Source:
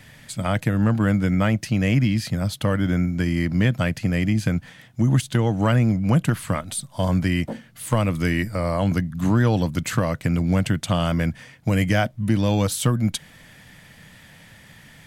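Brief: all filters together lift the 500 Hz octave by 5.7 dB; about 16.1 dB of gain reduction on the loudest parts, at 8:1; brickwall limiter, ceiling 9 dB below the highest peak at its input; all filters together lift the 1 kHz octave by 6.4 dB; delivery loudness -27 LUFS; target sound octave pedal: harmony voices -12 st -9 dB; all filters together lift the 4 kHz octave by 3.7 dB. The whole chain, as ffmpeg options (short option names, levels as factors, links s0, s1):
-filter_complex "[0:a]equalizer=f=500:t=o:g=5,equalizer=f=1000:t=o:g=6.5,equalizer=f=4000:t=o:g=4.5,acompressor=threshold=0.0355:ratio=8,alimiter=limit=0.075:level=0:latency=1,asplit=2[s0][s1];[s1]asetrate=22050,aresample=44100,atempo=2,volume=0.355[s2];[s0][s2]amix=inputs=2:normalize=0,volume=2.37"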